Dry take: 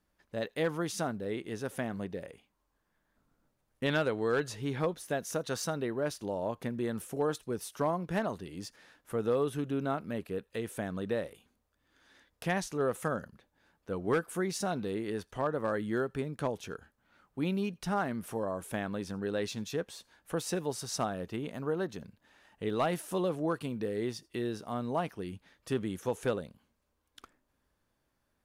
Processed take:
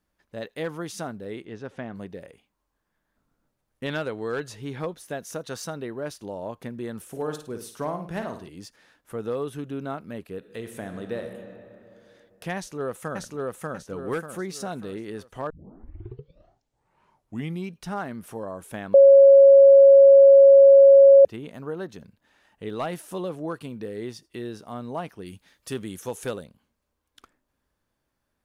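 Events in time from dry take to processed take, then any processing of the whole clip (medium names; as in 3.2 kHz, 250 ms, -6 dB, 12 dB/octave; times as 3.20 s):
1.45–1.95 s: distance through air 150 m
7.01–8.49 s: flutter echo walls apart 9.1 m, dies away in 0.41 s
10.37–11.25 s: reverb throw, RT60 2.9 s, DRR 5.5 dB
12.56–13.23 s: echo throw 590 ms, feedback 40%, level -0.5 dB
15.50 s: tape start 2.30 s
18.94–21.25 s: bleep 551 Hz -8 dBFS
25.25–26.43 s: treble shelf 3.1 kHz -> 4.6 kHz +10.5 dB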